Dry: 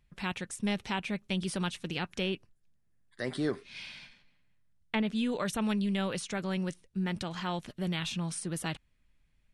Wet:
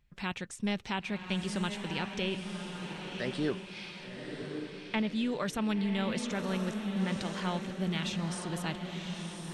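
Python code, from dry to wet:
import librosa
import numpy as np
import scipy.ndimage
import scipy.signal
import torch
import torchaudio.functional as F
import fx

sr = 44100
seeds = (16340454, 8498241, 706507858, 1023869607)

p1 = fx.peak_eq(x, sr, hz=10000.0, db=-10.0, octaves=0.28)
p2 = p1 + fx.echo_diffused(p1, sr, ms=1066, feedback_pct=42, wet_db=-5.0, dry=0)
y = p2 * 10.0 ** (-1.0 / 20.0)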